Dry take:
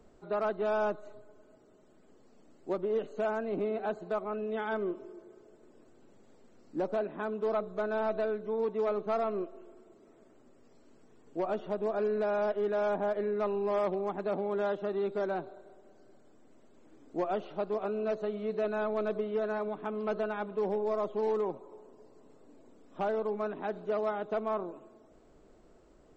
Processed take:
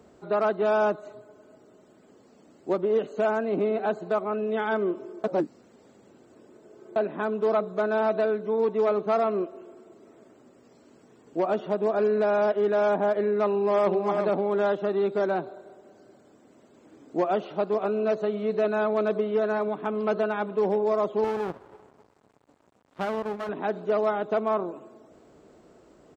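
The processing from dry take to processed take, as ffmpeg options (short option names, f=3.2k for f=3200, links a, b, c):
-filter_complex "[0:a]asplit=2[a][b];[b]afade=t=in:st=13.49:d=0.01,afade=t=out:st=13.92:d=0.01,aecho=0:1:370|740:0.530884|0.0530884[c];[a][c]amix=inputs=2:normalize=0,asettb=1/sr,asplit=3[d][e][f];[d]atrim=end=21.244[g];[e]atrim=start=21.24:end=23.49,asetpts=PTS-STARTPTS,afade=t=in:d=0.004:c=qsin,afade=t=out:st=2.246:d=0.004:c=qsin,aeval=exprs='max(val(0),0)':c=same[h];[f]atrim=start=23.486[i];[g][h]acrossfade=d=0.004:c1=hsin:c2=qsin[j];[j][i]acrossfade=d=0.004:c1=qsin:c2=hsin,asplit=3[k][l][m];[k]atrim=end=5.242[n];[l]atrim=start=5.238:end=6.962,asetpts=PTS-STARTPTS,areverse[o];[m]atrim=start=6.958[p];[n][o]acrossfade=d=0.004:c1=hsin:c2=hsin[q];[q][p]acrossfade=d=0.004:c1=hsin:c2=hsin,highpass=89,volume=7dB"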